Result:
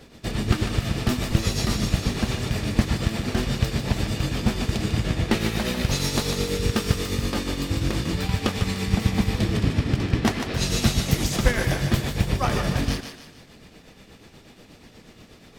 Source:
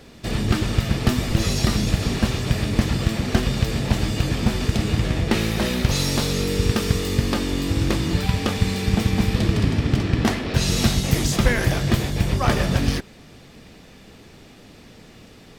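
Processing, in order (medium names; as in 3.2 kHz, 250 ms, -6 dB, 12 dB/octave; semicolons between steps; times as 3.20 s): tremolo triangle 8.3 Hz, depth 65%; thinning echo 149 ms, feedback 42%, level -7 dB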